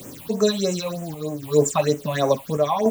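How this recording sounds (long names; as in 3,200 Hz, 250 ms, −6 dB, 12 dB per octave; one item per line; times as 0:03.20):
a quantiser's noise floor 8 bits, dither triangular
phaser sweep stages 6, 3.2 Hz, lowest notch 380–4,300 Hz
sample-and-hold tremolo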